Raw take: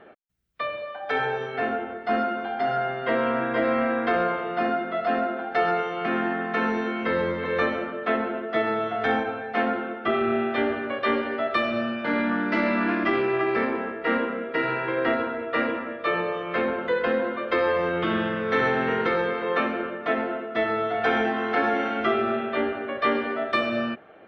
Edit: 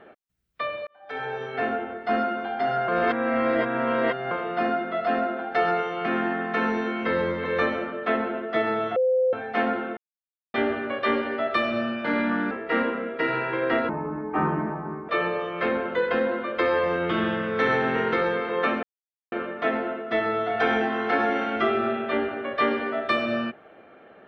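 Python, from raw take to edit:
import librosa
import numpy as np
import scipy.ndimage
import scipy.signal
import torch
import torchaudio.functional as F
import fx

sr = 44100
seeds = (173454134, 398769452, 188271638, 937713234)

y = fx.edit(x, sr, fx.fade_in_span(start_s=0.87, length_s=0.72),
    fx.reverse_span(start_s=2.88, length_s=1.43),
    fx.bleep(start_s=8.96, length_s=0.37, hz=514.0, db=-18.0),
    fx.silence(start_s=9.97, length_s=0.57),
    fx.cut(start_s=12.51, length_s=1.35),
    fx.speed_span(start_s=15.24, length_s=0.78, speed=0.65),
    fx.insert_silence(at_s=19.76, length_s=0.49), tone=tone)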